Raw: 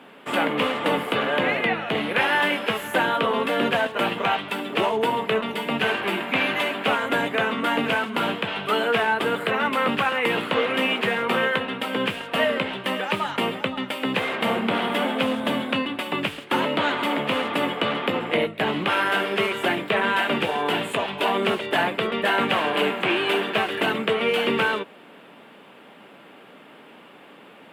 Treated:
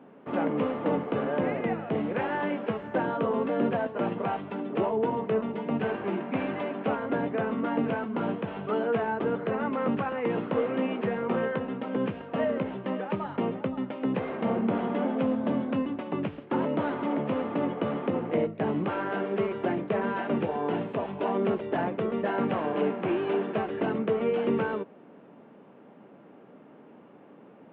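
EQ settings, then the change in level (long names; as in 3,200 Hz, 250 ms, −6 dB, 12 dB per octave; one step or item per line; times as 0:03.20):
head-to-tape spacing loss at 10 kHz 44 dB
tilt shelving filter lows +5 dB, about 930 Hz
−4.0 dB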